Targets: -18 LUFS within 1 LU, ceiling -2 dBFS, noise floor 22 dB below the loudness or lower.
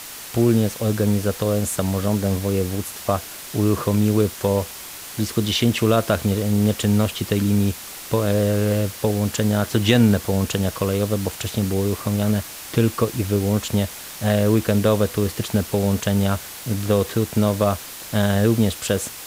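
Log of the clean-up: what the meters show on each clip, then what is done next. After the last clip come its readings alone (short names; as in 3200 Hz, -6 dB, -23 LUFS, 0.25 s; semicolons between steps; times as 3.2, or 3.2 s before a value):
noise floor -36 dBFS; noise floor target -43 dBFS; loudness -21.0 LUFS; peak -3.0 dBFS; loudness target -18.0 LUFS
-> denoiser 7 dB, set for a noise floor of -36 dBFS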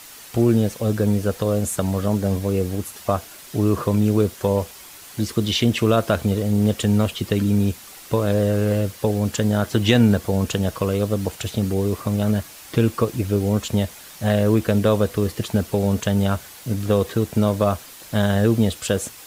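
noise floor -42 dBFS; noise floor target -44 dBFS
-> denoiser 6 dB, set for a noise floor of -42 dBFS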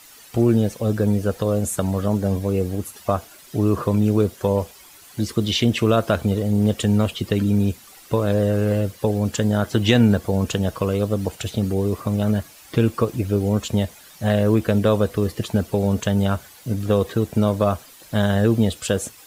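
noise floor -46 dBFS; loudness -21.5 LUFS; peak -3.0 dBFS; loudness target -18.0 LUFS
-> gain +3.5 dB; limiter -2 dBFS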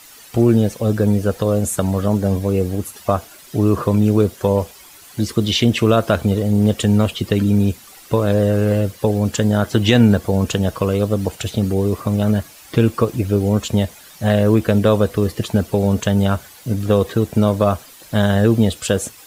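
loudness -18.0 LUFS; peak -2.0 dBFS; noise floor -43 dBFS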